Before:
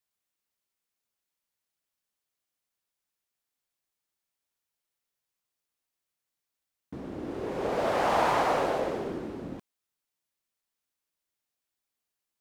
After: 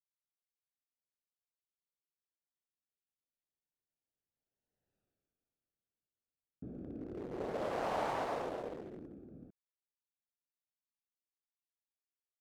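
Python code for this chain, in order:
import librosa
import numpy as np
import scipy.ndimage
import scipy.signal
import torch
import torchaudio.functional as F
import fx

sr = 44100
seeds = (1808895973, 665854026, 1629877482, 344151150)

y = fx.wiener(x, sr, points=41)
y = fx.doppler_pass(y, sr, speed_mps=27, closest_m=4.3, pass_at_s=4.97)
y = y * 10.0 ** (14.5 / 20.0)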